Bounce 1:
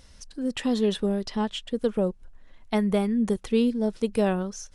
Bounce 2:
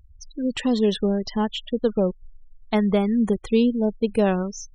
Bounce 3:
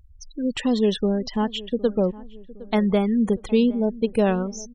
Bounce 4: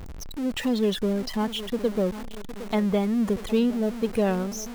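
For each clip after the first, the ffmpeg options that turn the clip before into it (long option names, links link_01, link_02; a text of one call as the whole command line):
ffmpeg -i in.wav -af "afftfilt=real='re*gte(hypot(re,im),0.0126)':imag='im*gte(hypot(re,im),0.0126)':win_size=1024:overlap=0.75,volume=3.5dB" out.wav
ffmpeg -i in.wav -filter_complex "[0:a]asplit=2[link_01][link_02];[link_02]adelay=762,lowpass=frequency=1200:poles=1,volume=-18.5dB,asplit=2[link_03][link_04];[link_04]adelay=762,lowpass=frequency=1200:poles=1,volume=0.5,asplit=2[link_05][link_06];[link_06]adelay=762,lowpass=frequency=1200:poles=1,volume=0.5,asplit=2[link_07][link_08];[link_08]adelay=762,lowpass=frequency=1200:poles=1,volume=0.5[link_09];[link_01][link_03][link_05][link_07][link_09]amix=inputs=5:normalize=0" out.wav
ffmpeg -i in.wav -af "aeval=exprs='val(0)+0.5*0.0398*sgn(val(0))':channel_layout=same,volume=-4.5dB" out.wav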